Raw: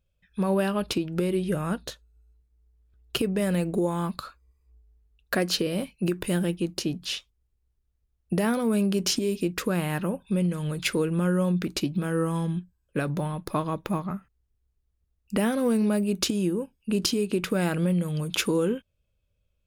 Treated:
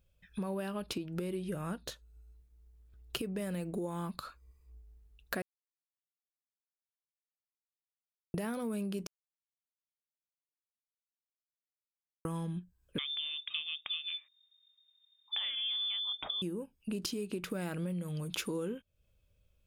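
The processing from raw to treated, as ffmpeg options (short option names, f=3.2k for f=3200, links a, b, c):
-filter_complex "[0:a]asettb=1/sr,asplit=3[a][b][c];[a]atrim=end=12.984[d];[b]atrim=start=12.98:end=16.42,asetpts=PTS-STARTPTS,afade=t=in:d=0.004:c=qsin,afade=t=out:st=3.436:d=0.004:c=qsin,lowpass=f=3.1k:t=q:w=0.5098,lowpass=f=3.1k:t=q:w=0.6013,lowpass=f=3.1k:t=q:w=0.9,lowpass=f=3.1k:t=q:w=2.563,afreqshift=-3700[e];[c]atrim=start=16.416[f];[d][e]acrossfade=d=0.004:c1=hsin:c2=qsin[g];[g][f]acrossfade=d=0.004:c1=qsin:c2=hsin,asplit=5[h][i][j][k][l];[h]atrim=end=5.42,asetpts=PTS-STARTPTS,afade=t=out:st=5.416:d=0.004:c=hsin[m];[i]atrim=start=5.42:end=8.34,asetpts=PTS-STARTPTS,volume=0[n];[j]atrim=start=8.34:end=9.07,asetpts=PTS-STARTPTS,afade=t=in:d=0.004:c=hsin,afade=t=out:st=0.726:d=0.004:c=hsin[o];[k]atrim=start=9.07:end=12.25,asetpts=PTS-STARTPTS,volume=0[p];[l]atrim=start=12.25,asetpts=PTS-STARTPTS,afade=t=in:d=0.004:c=hsin[q];[m][n][o][p][q]concat=n=5:v=0:a=1,acompressor=threshold=-42dB:ratio=3,highshelf=f=12k:g=4.5,volume=2.5dB"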